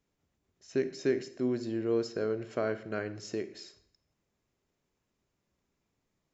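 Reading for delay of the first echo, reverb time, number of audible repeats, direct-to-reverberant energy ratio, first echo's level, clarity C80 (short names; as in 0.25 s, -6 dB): none, 0.65 s, none, 11.5 dB, none, 16.5 dB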